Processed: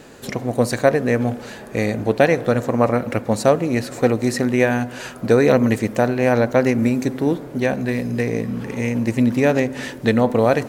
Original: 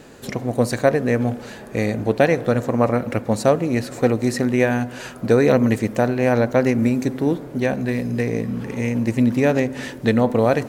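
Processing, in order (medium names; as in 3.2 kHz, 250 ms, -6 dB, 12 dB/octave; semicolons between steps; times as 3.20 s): bass shelf 350 Hz -2.5 dB; trim +2 dB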